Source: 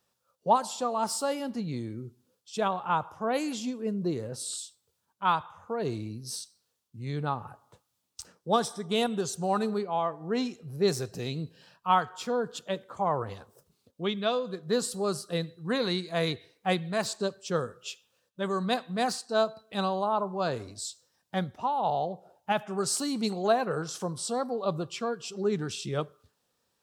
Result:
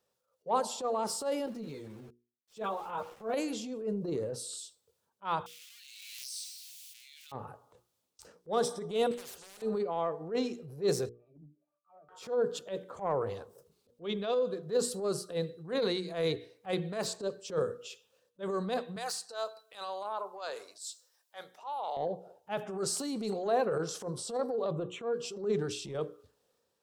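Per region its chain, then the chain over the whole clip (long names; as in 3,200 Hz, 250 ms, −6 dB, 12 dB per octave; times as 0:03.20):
0:01.46–0:03.34: low-shelf EQ 100 Hz −4.5 dB + centre clipping without the shift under −46.5 dBFS + string-ensemble chorus
0:05.46–0:07.32: converter with a step at zero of −37.5 dBFS + Butterworth high-pass 2,400 Hz + background raised ahead of every attack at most 27 dB per second
0:09.11–0:09.62: hard clipping −28 dBFS + every bin compressed towards the loudest bin 10 to 1
0:11.09–0:12.09: low-shelf EQ 210 Hz +6 dB + resonances in every octave D, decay 0.21 s + envelope filter 230–1,700 Hz, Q 4.1, down, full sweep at −35 dBFS
0:18.96–0:21.97: high-pass filter 900 Hz + high-shelf EQ 7,100 Hz +7.5 dB
0:24.71–0:25.14: Butterworth band-reject 4,900 Hz, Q 1.8 + parametric band 12,000 Hz −14 dB 1.1 octaves
whole clip: parametric band 470 Hz +10 dB 0.79 octaves; mains-hum notches 60/120/180/240/300/360/420/480 Hz; transient designer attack −11 dB, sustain +4 dB; level −6 dB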